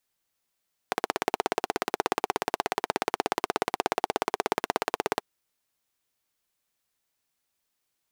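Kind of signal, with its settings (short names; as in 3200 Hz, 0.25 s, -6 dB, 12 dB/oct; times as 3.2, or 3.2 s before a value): single-cylinder engine model, steady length 4.29 s, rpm 2000, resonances 420/740 Hz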